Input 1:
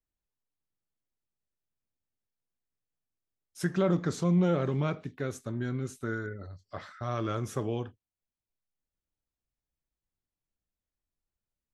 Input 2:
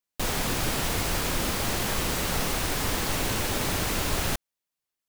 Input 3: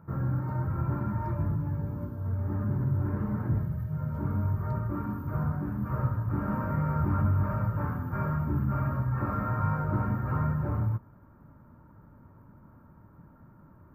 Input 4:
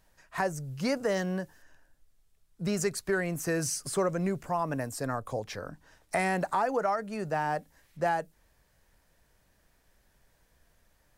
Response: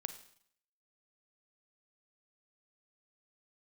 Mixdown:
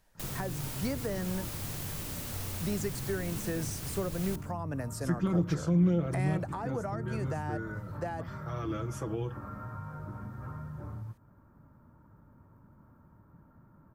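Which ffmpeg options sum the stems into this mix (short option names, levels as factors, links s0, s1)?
-filter_complex "[0:a]bandreject=f=3900:w=6,aecho=1:1:6.1:0.87,adelay=1450,volume=0.596[s0];[1:a]highshelf=f=7100:g=11,volume=0.141,asplit=2[s1][s2];[s2]volume=0.562[s3];[2:a]acompressor=threshold=0.02:ratio=6,adelay=150,volume=0.596[s4];[3:a]volume=0.75[s5];[4:a]atrim=start_sample=2205[s6];[s3][s6]afir=irnorm=-1:irlink=0[s7];[s0][s1][s4][s5][s7]amix=inputs=5:normalize=0,acrossover=split=380[s8][s9];[s9]acompressor=threshold=0.0126:ratio=4[s10];[s8][s10]amix=inputs=2:normalize=0"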